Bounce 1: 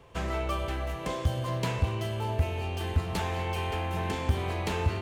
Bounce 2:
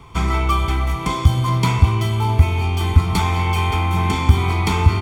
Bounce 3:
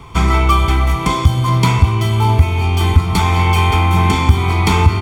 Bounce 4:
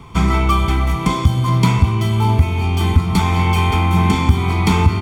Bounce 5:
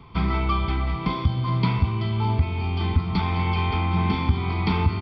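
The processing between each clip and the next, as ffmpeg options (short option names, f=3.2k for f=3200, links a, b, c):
-af "aecho=1:1:0.9:0.89,volume=9dB"
-af "alimiter=limit=-7dB:level=0:latency=1:release=437,volume=6dB"
-af "equalizer=f=200:t=o:w=0.95:g=7,volume=-3.5dB"
-af "aresample=11025,aresample=44100,volume=-8dB"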